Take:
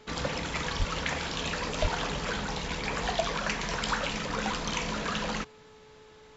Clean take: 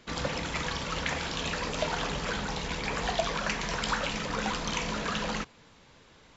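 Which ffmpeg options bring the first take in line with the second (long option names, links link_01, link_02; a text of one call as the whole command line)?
ffmpeg -i in.wav -filter_complex "[0:a]bandreject=frequency=431.3:width_type=h:width=4,bandreject=frequency=862.6:width_type=h:width=4,bandreject=frequency=1293.9:width_type=h:width=4,bandreject=frequency=1725.2:width_type=h:width=4,asplit=3[link_01][link_02][link_03];[link_01]afade=type=out:start_time=0.78:duration=0.02[link_04];[link_02]highpass=frequency=140:width=0.5412,highpass=frequency=140:width=1.3066,afade=type=in:start_time=0.78:duration=0.02,afade=type=out:start_time=0.9:duration=0.02[link_05];[link_03]afade=type=in:start_time=0.9:duration=0.02[link_06];[link_04][link_05][link_06]amix=inputs=3:normalize=0,asplit=3[link_07][link_08][link_09];[link_07]afade=type=out:start_time=1.81:duration=0.02[link_10];[link_08]highpass=frequency=140:width=0.5412,highpass=frequency=140:width=1.3066,afade=type=in:start_time=1.81:duration=0.02,afade=type=out:start_time=1.93:duration=0.02[link_11];[link_09]afade=type=in:start_time=1.93:duration=0.02[link_12];[link_10][link_11][link_12]amix=inputs=3:normalize=0" out.wav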